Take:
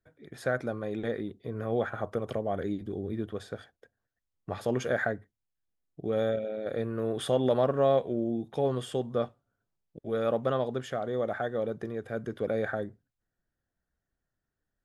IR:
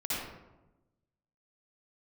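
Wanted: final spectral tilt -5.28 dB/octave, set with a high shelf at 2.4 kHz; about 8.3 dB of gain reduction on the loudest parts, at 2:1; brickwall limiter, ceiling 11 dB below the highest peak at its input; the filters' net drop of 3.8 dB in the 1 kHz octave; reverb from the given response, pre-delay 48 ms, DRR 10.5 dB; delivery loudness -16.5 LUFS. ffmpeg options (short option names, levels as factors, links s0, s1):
-filter_complex "[0:a]equalizer=f=1000:t=o:g=-7,highshelf=f=2400:g=5,acompressor=threshold=0.0141:ratio=2,alimiter=level_in=2.66:limit=0.0631:level=0:latency=1,volume=0.376,asplit=2[s0][s1];[1:a]atrim=start_sample=2205,adelay=48[s2];[s1][s2]afir=irnorm=-1:irlink=0,volume=0.15[s3];[s0][s3]amix=inputs=2:normalize=0,volume=20"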